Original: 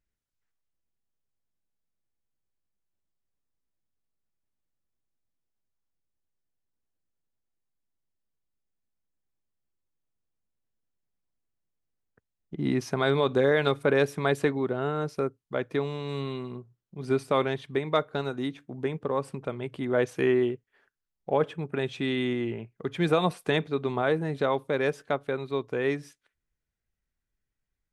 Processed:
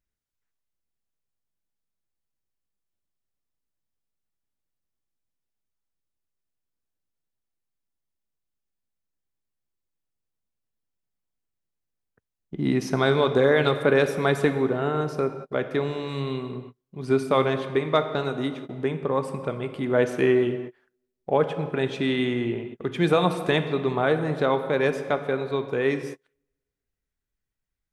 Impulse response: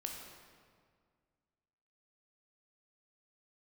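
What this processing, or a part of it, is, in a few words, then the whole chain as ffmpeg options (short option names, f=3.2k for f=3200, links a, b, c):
keyed gated reverb: -filter_complex "[0:a]asplit=3[a][b][c];[1:a]atrim=start_sample=2205[d];[b][d]afir=irnorm=-1:irlink=0[e];[c]apad=whole_len=1231652[f];[e][f]sidechaingate=range=-37dB:threshold=-48dB:ratio=16:detection=peak,volume=0.5dB[g];[a][g]amix=inputs=2:normalize=0,volume=-1.5dB"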